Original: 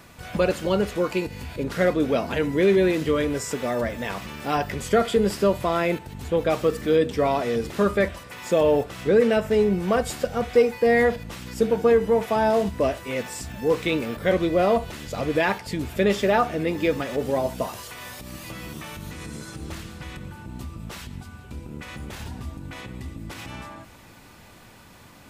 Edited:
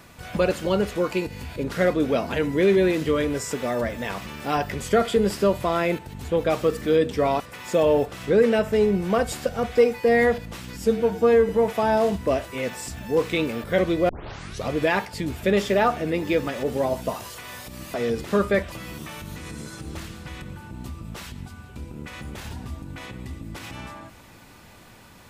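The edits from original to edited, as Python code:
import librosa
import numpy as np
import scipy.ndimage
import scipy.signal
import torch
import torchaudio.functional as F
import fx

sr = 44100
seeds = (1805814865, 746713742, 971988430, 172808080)

y = fx.edit(x, sr, fx.move(start_s=7.4, length_s=0.78, to_s=18.47),
    fx.stretch_span(start_s=11.52, length_s=0.5, factor=1.5),
    fx.tape_start(start_s=14.62, length_s=0.57), tone=tone)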